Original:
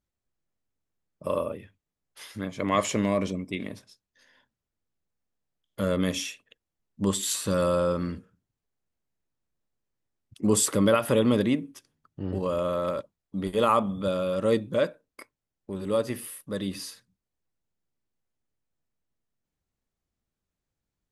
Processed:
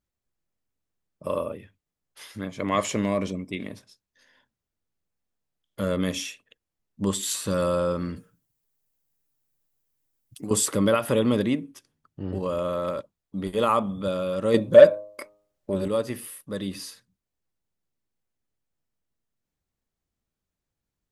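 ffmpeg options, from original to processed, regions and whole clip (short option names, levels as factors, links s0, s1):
-filter_complex "[0:a]asettb=1/sr,asplit=3[s0][s1][s2];[s0]atrim=end=8.164[s3];[s1]atrim=start=8.16:end=10.51,asetpts=PTS-STARTPTS,afade=t=in:d=0.004:c=qsin,afade=t=out:st=2.346:d=0.004:c=qsin,aemphasis=mode=production:type=50fm,aecho=1:1:6.8:0.54,atrim=end_sample=103635,acompressor=threshold=0.0355:ratio=12:attack=3.2:release=140:knee=1:detection=peak[s4];[s2]atrim=start=10.506[s5];[s3][s4]acrossfade=d=0.004:c1=hsin:c2=qsin[s6];[s6][s5]acrossfade=d=0.004:c1=qsin:c2=hsin,asettb=1/sr,asplit=3[s7][s8][s9];[s7]atrim=end=14.544[s10];[s8]atrim=start=14.54:end=15.88,asetpts=PTS-STARTPTS,afade=t=in:d=0.004:c=qsin,afade=t=out:st=1.336:d=0.004:c=qsin,equalizer=f=590:t=o:w=0.22:g=12.5,bandreject=f=103.4:t=h:w=4,bandreject=f=206.8:t=h:w=4,bandreject=f=310.2:t=h:w=4,bandreject=f=413.6:t=h:w=4,bandreject=f=517:t=h:w=4,bandreject=f=620.4:t=h:w=4,bandreject=f=723.8:t=h:w=4,bandreject=f=827.2:t=h:w=4,bandreject=f=930.6:t=h:w=4,bandreject=f=1034:t=h:w=4,bandreject=f=1137.4:t=h:w=4,bandreject=f=1240.8:t=h:w=4,acontrast=56[s11];[s9]atrim=start=15.876[s12];[s10][s11]acrossfade=d=0.004:c1=hsin:c2=qsin[s13];[s13][s12]acrossfade=d=0.004:c1=qsin:c2=hsin"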